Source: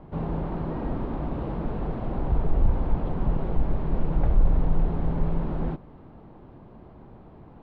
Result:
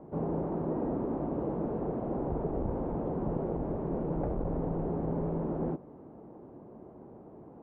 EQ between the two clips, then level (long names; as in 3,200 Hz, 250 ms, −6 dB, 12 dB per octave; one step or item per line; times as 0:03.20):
resonant band-pass 420 Hz, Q 0.99
high-frequency loss of the air 220 metres
+3.0 dB